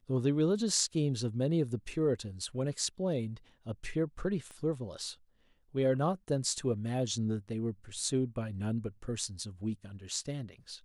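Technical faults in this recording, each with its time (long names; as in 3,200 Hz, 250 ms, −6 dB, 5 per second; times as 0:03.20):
0:04.51: click −34 dBFS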